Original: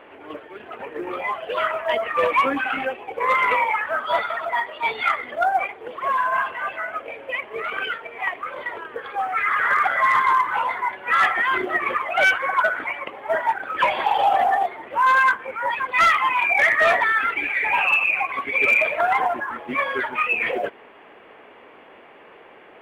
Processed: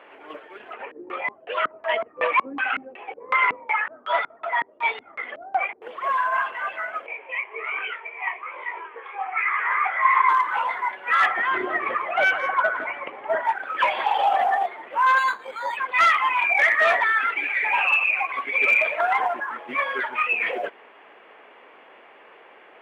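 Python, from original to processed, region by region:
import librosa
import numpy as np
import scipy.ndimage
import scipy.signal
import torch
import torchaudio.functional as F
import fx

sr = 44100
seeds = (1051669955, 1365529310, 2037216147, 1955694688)

y = fx.chain(x, sr, fx.peak_eq(hz=150.0, db=-7.0, octaves=0.87),
    fx.filter_lfo_lowpass(shape='square', hz=2.7, low_hz=260.0, high_hz=2700.0, q=1.2), at=(0.73, 5.82))
y = fx.chain(y, sr, fx.cabinet(low_hz=380.0, low_slope=12, high_hz=2900.0, hz=(380.0, 570.0, 980.0, 1500.0, 2300.0), db=(6, -5, 8, -6, 10)),
    fx.detune_double(cents=44), at=(7.06, 10.29))
y = fx.chain(y, sr, fx.tilt_eq(slope=-2.5),
    fx.echo_single(ms=169, db=-12.0), at=(11.26, 13.45))
y = fx.chain(y, sr, fx.dynamic_eq(hz=1600.0, q=1.4, threshold_db=-29.0, ratio=4.0, max_db=-4),
    fx.resample_linear(factor=8), at=(15.18, 15.77))
y = fx.highpass(y, sr, hz=600.0, slope=6)
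y = fx.high_shelf(y, sr, hz=7100.0, db=-8.5)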